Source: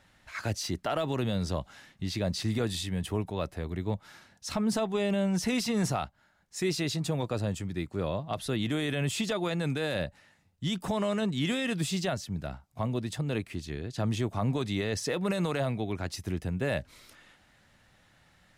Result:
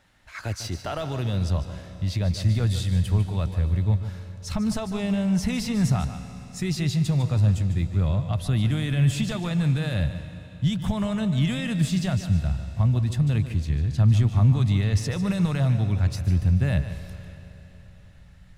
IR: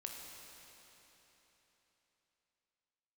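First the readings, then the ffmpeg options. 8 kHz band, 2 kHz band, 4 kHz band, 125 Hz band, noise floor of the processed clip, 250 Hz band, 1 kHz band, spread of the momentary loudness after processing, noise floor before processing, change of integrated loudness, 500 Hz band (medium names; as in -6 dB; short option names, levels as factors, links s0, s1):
+0.5 dB, +0.5 dB, +0.5 dB, +12.5 dB, -47 dBFS, +5.0 dB, -0.5 dB, 10 LU, -64 dBFS, +7.5 dB, -3.0 dB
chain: -filter_complex "[0:a]asubboost=boost=11.5:cutoff=110,asplit=2[s0][s1];[1:a]atrim=start_sample=2205,adelay=149[s2];[s1][s2]afir=irnorm=-1:irlink=0,volume=0.473[s3];[s0][s3]amix=inputs=2:normalize=0"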